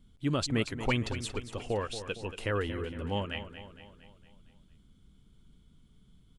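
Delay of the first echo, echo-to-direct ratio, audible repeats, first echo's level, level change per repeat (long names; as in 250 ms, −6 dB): 230 ms, −10.0 dB, 5, −11.5 dB, −5.5 dB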